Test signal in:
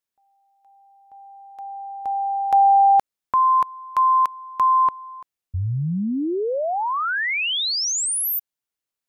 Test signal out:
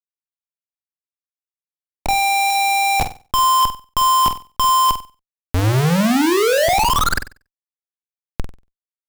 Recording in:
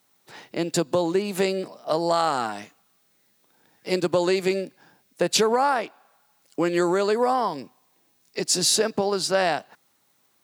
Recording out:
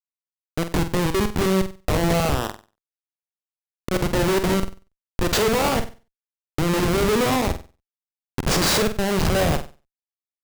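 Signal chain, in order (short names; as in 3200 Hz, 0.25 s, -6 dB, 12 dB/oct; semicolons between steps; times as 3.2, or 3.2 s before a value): stepped spectrum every 50 ms; Schmitt trigger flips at -22.5 dBFS; flutter echo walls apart 8.1 m, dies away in 0.32 s; gain +7 dB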